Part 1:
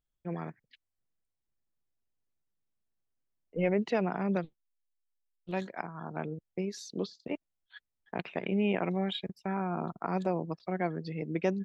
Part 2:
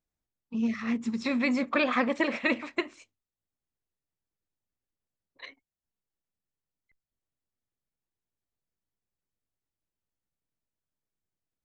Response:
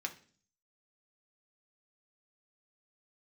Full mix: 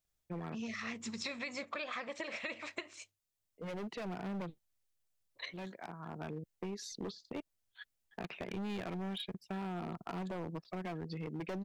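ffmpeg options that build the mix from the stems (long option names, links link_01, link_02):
-filter_complex "[0:a]asoftclip=type=hard:threshold=-31.5dB,adelay=50,volume=-0.5dB[link_01];[1:a]equalizer=frequency=100:width_type=o:width=0.33:gain=7,equalizer=frequency=250:width_type=o:width=0.33:gain=-10,equalizer=frequency=630:width_type=o:width=0.33:gain=5,alimiter=limit=-20.5dB:level=0:latency=1:release=182,highshelf=frequency=2200:gain=11.5,volume=-4.5dB,asplit=2[link_02][link_03];[link_03]apad=whole_len=515732[link_04];[link_01][link_04]sidechaincompress=threshold=-45dB:ratio=3:attack=6.9:release=1470[link_05];[link_05][link_02]amix=inputs=2:normalize=0,acompressor=threshold=-38dB:ratio=6"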